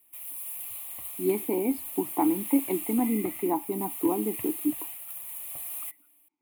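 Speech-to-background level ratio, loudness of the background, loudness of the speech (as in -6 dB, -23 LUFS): 6.0 dB, -35.0 LUFS, -29.0 LUFS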